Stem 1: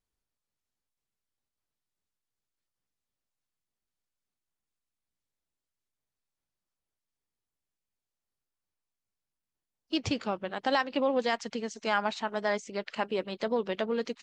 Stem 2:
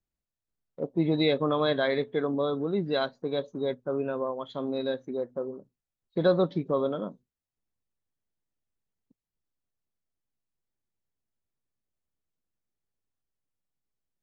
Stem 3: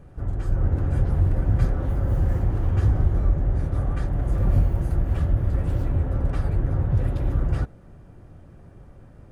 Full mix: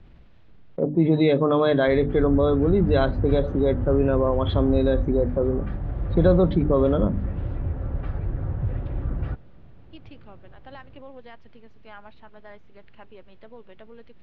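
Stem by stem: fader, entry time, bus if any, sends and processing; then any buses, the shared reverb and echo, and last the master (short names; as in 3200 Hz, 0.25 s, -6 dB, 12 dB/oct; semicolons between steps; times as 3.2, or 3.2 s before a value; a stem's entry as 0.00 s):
-16.5 dB, 0.00 s, no send, dry
-1.0 dB, 0.00 s, no send, low shelf 400 Hz +10 dB; notches 50/100/150/200/250/300 Hz; fast leveller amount 50%
-5.0 dB, 1.70 s, no send, dry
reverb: off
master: LPF 3400 Hz 24 dB/oct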